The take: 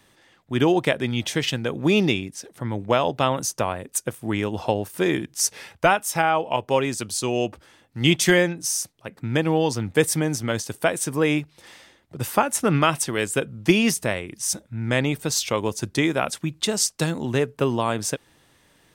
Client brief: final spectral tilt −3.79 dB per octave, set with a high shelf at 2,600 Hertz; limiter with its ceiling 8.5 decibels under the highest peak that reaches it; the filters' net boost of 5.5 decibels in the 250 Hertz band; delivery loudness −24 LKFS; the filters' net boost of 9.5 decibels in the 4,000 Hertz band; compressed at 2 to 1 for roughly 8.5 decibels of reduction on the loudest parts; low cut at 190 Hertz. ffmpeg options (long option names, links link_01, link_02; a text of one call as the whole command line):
ffmpeg -i in.wav -af "highpass=190,equalizer=frequency=250:width_type=o:gain=9,highshelf=frequency=2600:gain=6,equalizer=frequency=4000:width_type=o:gain=7.5,acompressor=threshold=-24dB:ratio=2,volume=1.5dB,alimiter=limit=-11.5dB:level=0:latency=1" out.wav